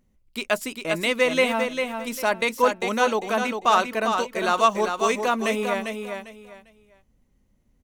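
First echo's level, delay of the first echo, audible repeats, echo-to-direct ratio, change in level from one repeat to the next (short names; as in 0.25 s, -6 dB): -6.0 dB, 0.399 s, 3, -5.5 dB, -12.5 dB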